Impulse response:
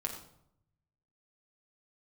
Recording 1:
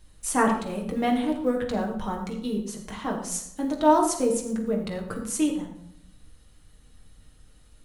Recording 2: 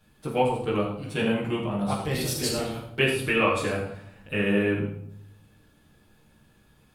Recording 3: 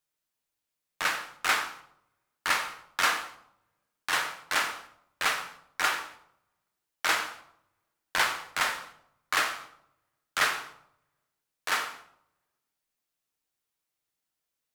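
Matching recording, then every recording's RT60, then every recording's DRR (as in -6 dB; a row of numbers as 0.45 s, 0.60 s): 1; 0.70 s, 0.70 s, 0.70 s; -0.5 dB, -7.5 dB, 5.5 dB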